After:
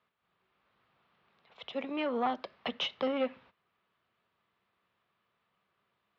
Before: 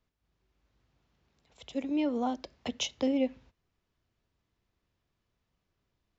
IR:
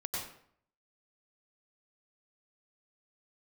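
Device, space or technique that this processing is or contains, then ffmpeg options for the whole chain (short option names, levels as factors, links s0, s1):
overdrive pedal into a guitar cabinet: -filter_complex "[0:a]asplit=2[s0][s1];[s1]highpass=f=720:p=1,volume=6.31,asoftclip=type=tanh:threshold=0.126[s2];[s0][s2]amix=inputs=2:normalize=0,lowpass=f=4100:p=1,volume=0.501,highpass=110,equalizer=f=190:t=q:w=4:g=4,equalizer=f=290:t=q:w=4:g=-7,equalizer=f=1200:t=q:w=4:g=6,lowpass=f=3800:w=0.5412,lowpass=f=3800:w=1.3066,volume=0.708"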